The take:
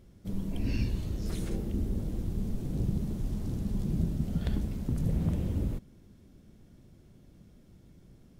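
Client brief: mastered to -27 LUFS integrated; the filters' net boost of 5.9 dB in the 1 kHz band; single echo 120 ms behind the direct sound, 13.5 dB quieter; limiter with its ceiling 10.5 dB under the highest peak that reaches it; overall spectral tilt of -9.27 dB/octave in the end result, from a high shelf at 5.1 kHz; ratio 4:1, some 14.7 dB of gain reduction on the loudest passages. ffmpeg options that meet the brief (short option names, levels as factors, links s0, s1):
-af "equalizer=f=1000:t=o:g=8,highshelf=f=5100:g=-5.5,acompressor=threshold=0.00708:ratio=4,alimiter=level_in=5.62:limit=0.0631:level=0:latency=1,volume=0.178,aecho=1:1:120:0.211,volume=14.1"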